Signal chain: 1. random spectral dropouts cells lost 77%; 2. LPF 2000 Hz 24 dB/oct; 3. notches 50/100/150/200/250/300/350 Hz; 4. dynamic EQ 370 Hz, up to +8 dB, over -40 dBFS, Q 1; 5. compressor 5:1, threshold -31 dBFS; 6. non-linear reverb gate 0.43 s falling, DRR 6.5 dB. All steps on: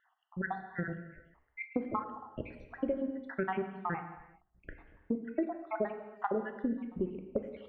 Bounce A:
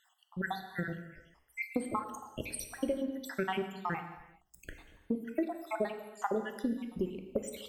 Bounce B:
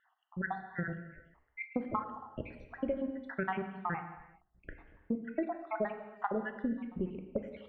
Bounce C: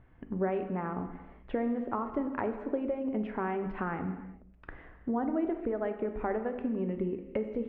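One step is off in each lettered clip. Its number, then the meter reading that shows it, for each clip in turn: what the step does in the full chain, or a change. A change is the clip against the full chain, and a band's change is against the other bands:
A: 2, 2 kHz band +1.5 dB; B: 4, 500 Hz band -2.0 dB; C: 1, 2 kHz band -5.5 dB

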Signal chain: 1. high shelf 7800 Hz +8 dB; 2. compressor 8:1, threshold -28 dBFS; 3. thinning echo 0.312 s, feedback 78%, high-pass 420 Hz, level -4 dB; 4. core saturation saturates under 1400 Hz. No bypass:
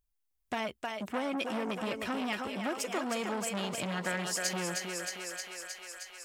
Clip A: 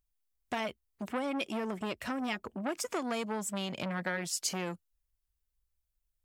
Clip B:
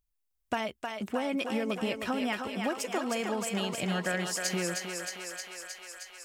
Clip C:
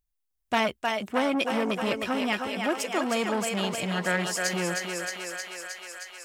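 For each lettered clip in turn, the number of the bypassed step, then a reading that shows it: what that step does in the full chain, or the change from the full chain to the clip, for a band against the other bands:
3, momentary loudness spread change -2 LU; 4, crest factor change -2.0 dB; 2, mean gain reduction 5.0 dB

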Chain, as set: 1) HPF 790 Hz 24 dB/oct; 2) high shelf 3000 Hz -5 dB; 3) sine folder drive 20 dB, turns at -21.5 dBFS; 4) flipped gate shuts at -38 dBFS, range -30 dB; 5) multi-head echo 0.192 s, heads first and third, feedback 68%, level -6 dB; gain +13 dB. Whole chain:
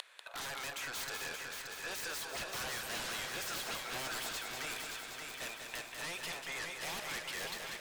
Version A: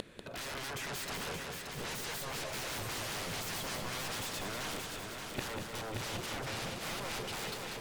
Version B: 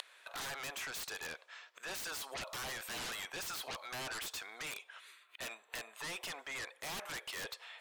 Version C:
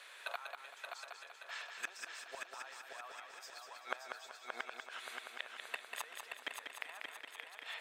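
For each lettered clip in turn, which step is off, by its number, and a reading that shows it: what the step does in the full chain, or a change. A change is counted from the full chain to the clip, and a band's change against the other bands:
1, 125 Hz band +10.0 dB; 5, echo-to-direct -0.5 dB to none; 3, crest factor change +13.5 dB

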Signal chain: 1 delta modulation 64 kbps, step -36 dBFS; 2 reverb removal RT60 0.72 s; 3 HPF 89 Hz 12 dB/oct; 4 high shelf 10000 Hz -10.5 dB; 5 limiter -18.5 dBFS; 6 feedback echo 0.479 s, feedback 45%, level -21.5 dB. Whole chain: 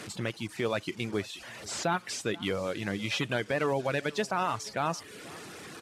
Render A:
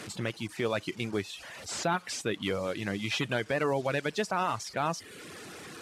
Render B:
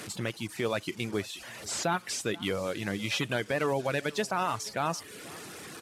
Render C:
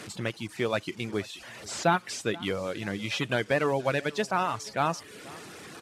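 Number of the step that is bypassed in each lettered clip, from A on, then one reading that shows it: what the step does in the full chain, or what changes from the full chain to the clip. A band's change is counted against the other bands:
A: 6, echo-to-direct -20.5 dB to none; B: 4, 8 kHz band +3.0 dB; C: 5, crest factor change +5.0 dB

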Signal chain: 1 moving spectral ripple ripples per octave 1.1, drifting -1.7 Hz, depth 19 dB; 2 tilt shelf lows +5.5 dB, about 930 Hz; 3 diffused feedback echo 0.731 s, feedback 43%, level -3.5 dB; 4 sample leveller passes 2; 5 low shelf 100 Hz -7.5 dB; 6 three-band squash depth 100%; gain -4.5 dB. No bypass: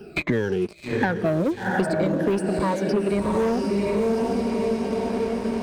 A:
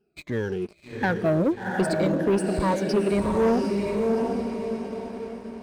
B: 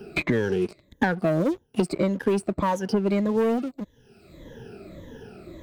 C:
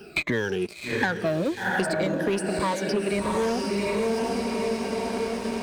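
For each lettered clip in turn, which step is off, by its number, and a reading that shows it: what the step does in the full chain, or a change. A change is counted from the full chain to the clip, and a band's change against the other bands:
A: 6, crest factor change -3.0 dB; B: 3, momentary loudness spread change +17 LU; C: 2, 8 kHz band +7.0 dB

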